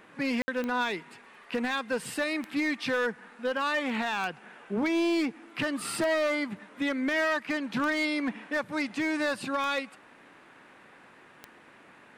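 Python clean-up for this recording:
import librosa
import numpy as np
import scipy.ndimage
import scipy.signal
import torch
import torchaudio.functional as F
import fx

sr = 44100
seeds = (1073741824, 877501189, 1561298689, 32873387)

y = fx.fix_declip(x, sr, threshold_db=-22.0)
y = fx.fix_declick_ar(y, sr, threshold=10.0)
y = fx.fix_ambience(y, sr, seeds[0], print_start_s=11.59, print_end_s=12.09, start_s=0.42, end_s=0.48)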